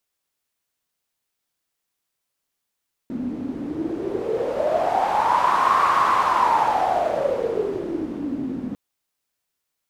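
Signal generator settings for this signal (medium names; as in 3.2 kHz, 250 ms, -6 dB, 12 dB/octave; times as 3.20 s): wind-like swept noise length 5.65 s, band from 250 Hz, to 1.1 kHz, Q 8.8, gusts 1, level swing 11 dB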